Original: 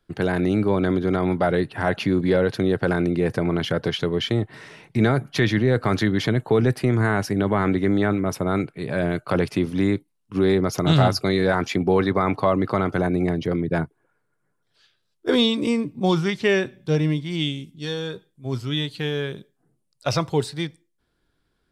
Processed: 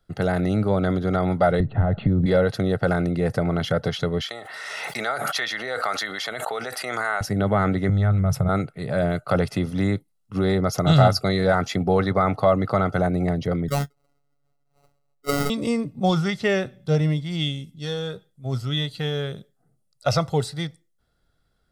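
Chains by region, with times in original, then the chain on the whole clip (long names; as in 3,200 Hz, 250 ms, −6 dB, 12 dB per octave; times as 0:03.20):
0:01.60–0:02.26: downward compressor 3 to 1, threshold −28 dBFS + linear-phase brick-wall low-pass 4,500 Hz + spectral tilt −4.5 dB per octave
0:04.21–0:07.21: high-pass filter 850 Hz + background raised ahead of every attack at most 22 dB per second
0:07.89–0:08.49: low shelf with overshoot 190 Hz +9.5 dB, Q 3 + downward compressor, threshold −18 dBFS
0:13.68–0:15.50: sample-rate reduction 1,700 Hz + phases set to zero 142 Hz
whole clip: parametric band 2,500 Hz −5.5 dB 0.63 octaves; comb filter 1.5 ms, depth 54%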